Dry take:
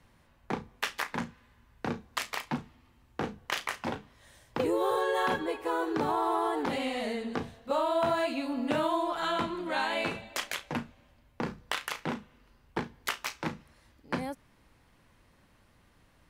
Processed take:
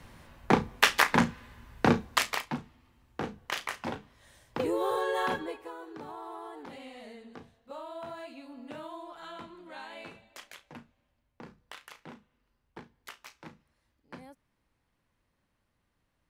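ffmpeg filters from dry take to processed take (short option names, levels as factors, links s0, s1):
-af "volume=3.35,afade=t=out:st=1.94:d=0.55:silence=0.251189,afade=t=out:st=5.29:d=0.45:silence=0.237137"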